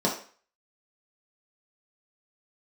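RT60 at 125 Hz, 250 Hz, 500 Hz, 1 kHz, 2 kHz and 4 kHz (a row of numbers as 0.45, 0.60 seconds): 0.30, 0.40, 0.40, 0.45, 0.45, 0.40 seconds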